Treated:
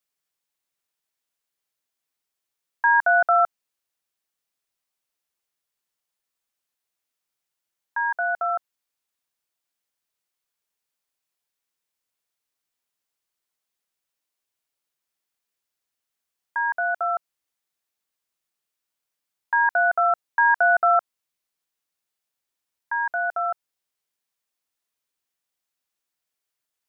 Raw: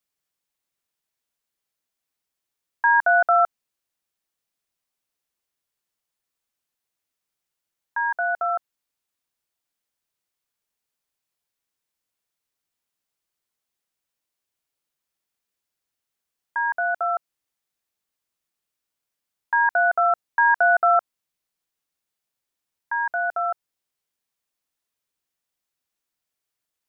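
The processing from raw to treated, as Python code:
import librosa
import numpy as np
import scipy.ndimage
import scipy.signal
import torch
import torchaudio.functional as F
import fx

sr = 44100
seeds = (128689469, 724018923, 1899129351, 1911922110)

y = fx.low_shelf(x, sr, hz=340.0, db=-5.0)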